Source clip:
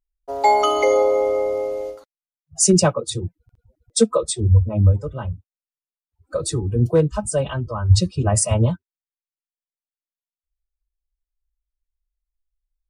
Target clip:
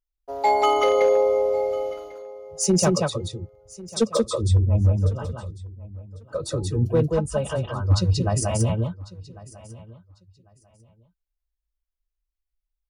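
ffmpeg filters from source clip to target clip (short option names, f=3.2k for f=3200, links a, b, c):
-filter_complex "[0:a]asplit=2[a][b];[b]aecho=0:1:181:0.708[c];[a][c]amix=inputs=2:normalize=0,asoftclip=type=hard:threshold=-7dB,equalizer=f=8.3k:w=3.2:g=-9.5,asplit=2[d][e];[e]aecho=0:1:1097|2194:0.1|0.02[f];[d][f]amix=inputs=2:normalize=0,volume=-4.5dB"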